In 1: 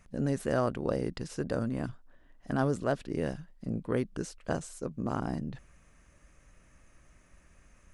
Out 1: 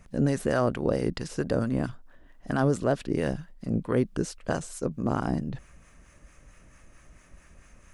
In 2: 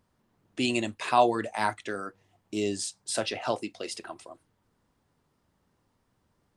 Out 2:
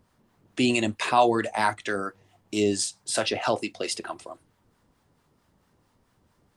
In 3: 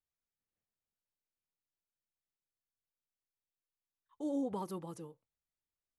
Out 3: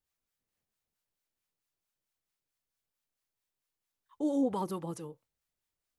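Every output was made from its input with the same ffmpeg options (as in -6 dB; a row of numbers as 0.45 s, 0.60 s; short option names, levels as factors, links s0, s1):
-filter_complex "[0:a]acrossover=split=750[s0][s1];[s0]aeval=exprs='val(0)*(1-0.5/2+0.5/2*cos(2*PI*4.5*n/s))':c=same[s2];[s1]aeval=exprs='val(0)*(1-0.5/2-0.5/2*cos(2*PI*4.5*n/s))':c=same[s3];[s2][s3]amix=inputs=2:normalize=0,asplit=2[s4][s5];[s5]alimiter=limit=0.0708:level=0:latency=1,volume=1.33[s6];[s4][s6]amix=inputs=2:normalize=0,volume=1.12"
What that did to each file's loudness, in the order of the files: +5.0 LU, +3.5 LU, +5.5 LU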